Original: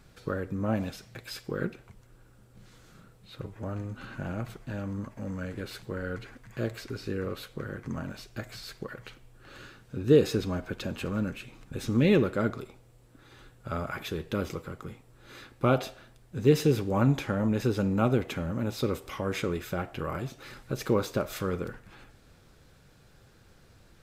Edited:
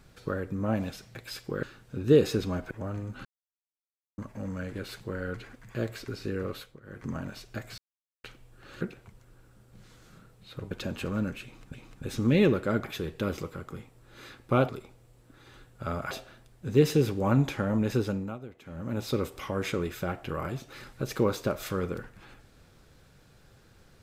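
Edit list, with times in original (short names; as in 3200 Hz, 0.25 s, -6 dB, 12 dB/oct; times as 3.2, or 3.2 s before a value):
1.63–3.53 swap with 9.63–10.71
4.07–5 mute
7.38–7.87 dip -21.5 dB, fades 0.24 s
8.6–9.06 mute
11.44–11.74 loop, 2 plays
12.54–13.96 move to 15.81
17.69–18.71 dip -18 dB, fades 0.38 s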